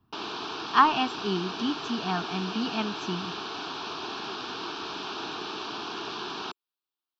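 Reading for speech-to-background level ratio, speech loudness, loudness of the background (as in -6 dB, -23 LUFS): 6.5 dB, -28.0 LUFS, -34.5 LUFS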